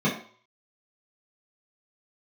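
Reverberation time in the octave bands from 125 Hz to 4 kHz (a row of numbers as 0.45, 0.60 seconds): 0.35, 0.40, 0.45, 0.55, 0.45, 0.45 seconds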